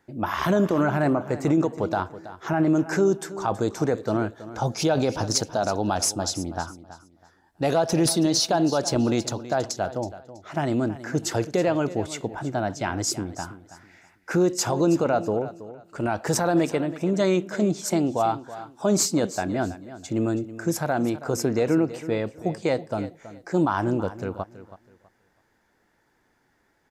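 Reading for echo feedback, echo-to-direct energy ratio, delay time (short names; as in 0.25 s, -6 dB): 25%, -14.5 dB, 0.325 s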